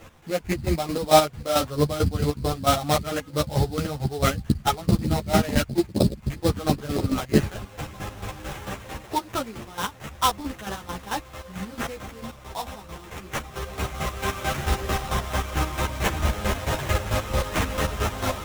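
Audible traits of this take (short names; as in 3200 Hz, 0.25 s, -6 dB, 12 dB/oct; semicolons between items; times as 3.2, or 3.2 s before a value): a quantiser's noise floor 10-bit, dither triangular; chopped level 4.5 Hz, depth 65%, duty 35%; aliases and images of a low sample rate 4600 Hz, jitter 20%; a shimmering, thickened sound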